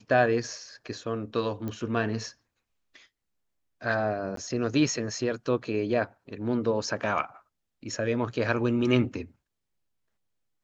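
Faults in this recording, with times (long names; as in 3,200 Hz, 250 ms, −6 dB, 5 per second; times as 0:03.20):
0:01.68: click −22 dBFS
0:04.36–0:04.37: drop-out 13 ms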